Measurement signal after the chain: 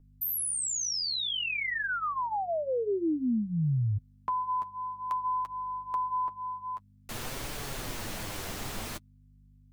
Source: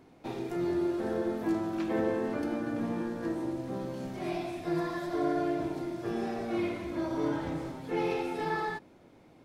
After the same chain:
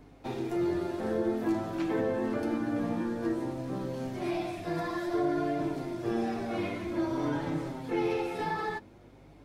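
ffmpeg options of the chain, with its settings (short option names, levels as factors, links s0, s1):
-filter_complex "[0:a]aeval=exprs='val(0)+0.00141*(sin(2*PI*50*n/s)+sin(2*PI*2*50*n/s)/2+sin(2*PI*3*50*n/s)/3+sin(2*PI*4*50*n/s)/4+sin(2*PI*5*50*n/s)/5)':c=same,flanger=delay=6.7:depth=3.7:regen=-20:speed=0.53:shape=triangular,acrossover=split=350[s0][s1];[s1]acompressor=threshold=0.02:ratio=6[s2];[s0][s2]amix=inputs=2:normalize=0,volume=1.78"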